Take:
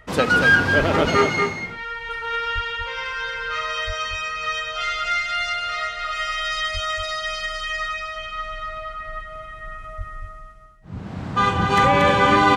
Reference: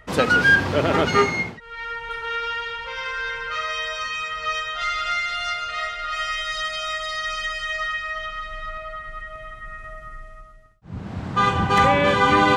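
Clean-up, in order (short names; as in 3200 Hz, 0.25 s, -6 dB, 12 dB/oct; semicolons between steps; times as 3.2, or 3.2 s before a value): de-plosive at 0.78/2.54/3.86/6.73/9.97; inverse comb 0.234 s -5.5 dB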